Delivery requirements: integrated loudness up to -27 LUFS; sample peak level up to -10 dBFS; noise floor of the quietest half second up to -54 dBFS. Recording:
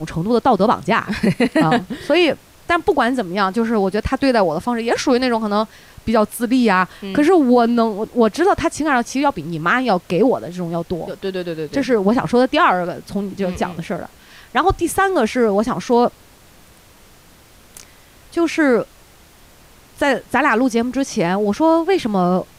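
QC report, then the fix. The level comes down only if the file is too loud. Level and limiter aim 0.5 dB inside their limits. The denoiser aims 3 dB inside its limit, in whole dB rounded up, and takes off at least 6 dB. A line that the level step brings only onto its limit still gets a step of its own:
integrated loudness -17.5 LUFS: fail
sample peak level -4.5 dBFS: fail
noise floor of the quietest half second -47 dBFS: fail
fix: gain -10 dB

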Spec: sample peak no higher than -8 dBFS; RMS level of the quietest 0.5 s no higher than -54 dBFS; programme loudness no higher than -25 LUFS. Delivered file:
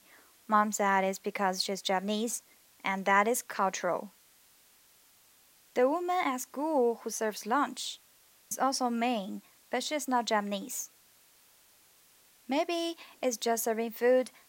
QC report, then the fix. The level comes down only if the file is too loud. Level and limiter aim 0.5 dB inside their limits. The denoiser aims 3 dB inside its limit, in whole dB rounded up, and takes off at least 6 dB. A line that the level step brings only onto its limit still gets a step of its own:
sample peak -11.0 dBFS: OK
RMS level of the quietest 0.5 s -63 dBFS: OK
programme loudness -31.0 LUFS: OK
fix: none

